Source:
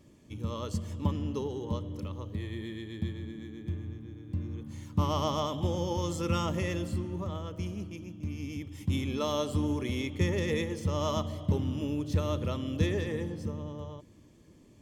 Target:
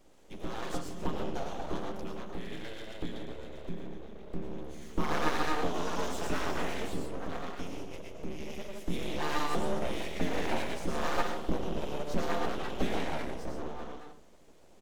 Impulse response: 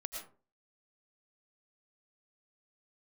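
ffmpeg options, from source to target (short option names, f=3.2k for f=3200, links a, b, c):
-filter_complex "[0:a]acrossover=split=1300[a][b];[b]asoftclip=type=tanh:threshold=-38.5dB[c];[a][c]amix=inputs=2:normalize=0,asplit=2[d][e];[e]adelay=13,volume=-6dB[f];[d][f]amix=inputs=2:normalize=0[g];[1:a]atrim=start_sample=2205[h];[g][h]afir=irnorm=-1:irlink=0,aeval=exprs='abs(val(0))':c=same,equalizer=f=110:t=o:w=0.83:g=-10,volume=2.5dB"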